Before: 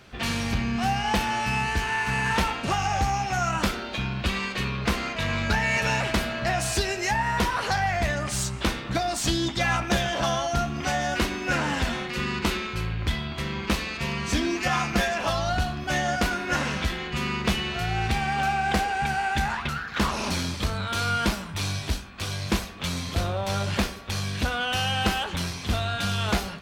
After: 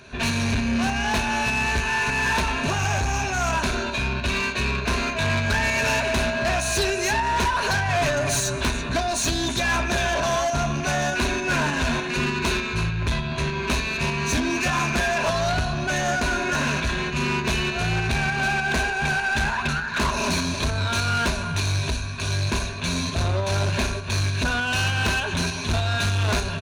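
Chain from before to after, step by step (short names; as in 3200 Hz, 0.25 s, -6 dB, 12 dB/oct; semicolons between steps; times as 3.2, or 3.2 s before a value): ripple EQ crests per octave 1.5, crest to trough 11 dB; on a send: echo 0.337 s -13 dB; on the sum: downsampling 22050 Hz; 7.89–8.61 comb 7 ms, depth 96%; in parallel at 0 dB: pump 100 bpm, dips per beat 2, -14 dB, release 0.259 s; on the sum: soft clip -18.5 dBFS, distortion -11 dB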